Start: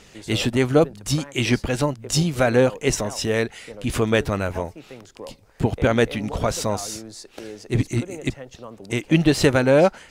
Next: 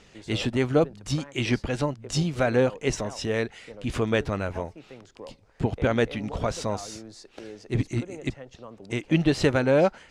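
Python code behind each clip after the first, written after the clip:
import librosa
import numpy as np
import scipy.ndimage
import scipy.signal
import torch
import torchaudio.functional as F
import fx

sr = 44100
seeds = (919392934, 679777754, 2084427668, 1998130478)

y = fx.air_absorb(x, sr, metres=59.0)
y = y * 10.0 ** (-4.5 / 20.0)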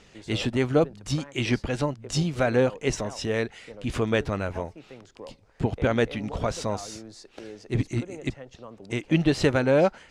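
y = x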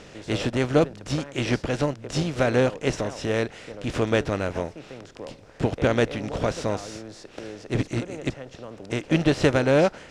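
y = fx.bin_compress(x, sr, power=0.6)
y = fx.upward_expand(y, sr, threshold_db=-30.0, expansion=1.5)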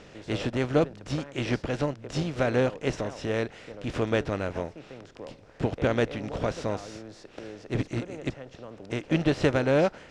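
y = fx.high_shelf(x, sr, hz=7500.0, db=-9.5)
y = y * 10.0 ** (-3.5 / 20.0)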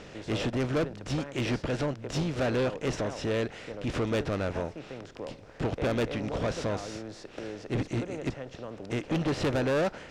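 y = 10.0 ** (-26.5 / 20.0) * np.tanh(x / 10.0 ** (-26.5 / 20.0))
y = y * 10.0 ** (3.0 / 20.0)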